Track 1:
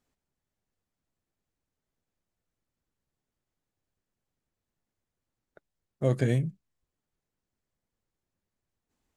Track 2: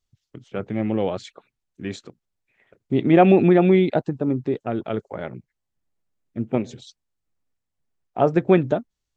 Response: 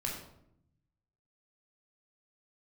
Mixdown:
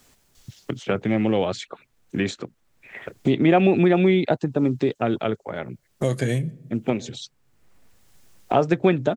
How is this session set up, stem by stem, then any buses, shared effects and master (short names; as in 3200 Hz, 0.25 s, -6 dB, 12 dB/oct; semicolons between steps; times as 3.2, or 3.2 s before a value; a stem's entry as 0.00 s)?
-1.5 dB, 0.00 s, send -23 dB, dry
+0.5 dB, 0.35 s, no send, auto duck -10 dB, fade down 0.40 s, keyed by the first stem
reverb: on, RT60 0.75 s, pre-delay 15 ms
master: high shelf 2100 Hz +8 dB; three-band squash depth 70%